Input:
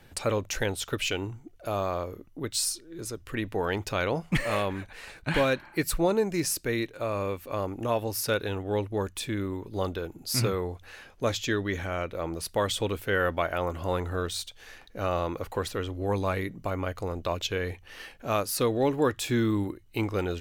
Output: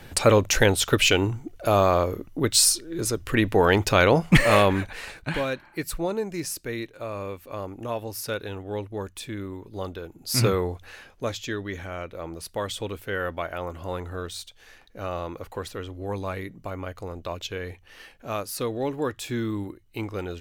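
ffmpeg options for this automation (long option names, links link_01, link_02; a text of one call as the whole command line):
ffmpeg -i in.wav -af "volume=19dB,afade=type=out:start_time=4.79:duration=0.58:silence=0.223872,afade=type=in:start_time=10.19:duration=0.28:silence=0.354813,afade=type=out:start_time=10.47:duration=0.87:silence=0.354813" out.wav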